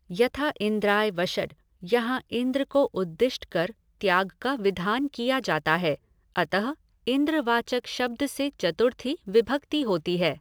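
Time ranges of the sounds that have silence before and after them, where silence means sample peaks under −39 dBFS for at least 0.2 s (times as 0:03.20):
0:01.83–0:03.71
0:04.01–0:05.95
0:06.36–0:06.74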